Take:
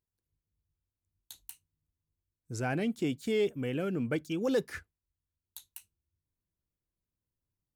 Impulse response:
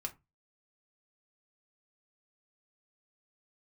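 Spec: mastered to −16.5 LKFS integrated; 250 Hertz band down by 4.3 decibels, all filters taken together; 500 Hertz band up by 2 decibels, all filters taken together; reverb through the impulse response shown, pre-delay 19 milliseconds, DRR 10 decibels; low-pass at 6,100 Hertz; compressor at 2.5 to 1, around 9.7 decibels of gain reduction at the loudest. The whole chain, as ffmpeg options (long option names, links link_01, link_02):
-filter_complex "[0:a]lowpass=6100,equalizer=frequency=250:width_type=o:gain=-7,equalizer=frequency=500:width_type=o:gain=4.5,acompressor=threshold=-37dB:ratio=2.5,asplit=2[link_01][link_02];[1:a]atrim=start_sample=2205,adelay=19[link_03];[link_02][link_03]afir=irnorm=-1:irlink=0,volume=-9dB[link_04];[link_01][link_04]amix=inputs=2:normalize=0,volume=22.5dB"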